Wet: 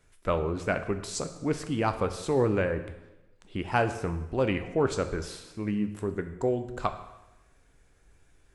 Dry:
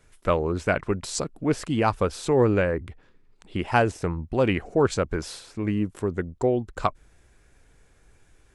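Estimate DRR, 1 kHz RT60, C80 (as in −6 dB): 8.0 dB, 1.0 s, 13.0 dB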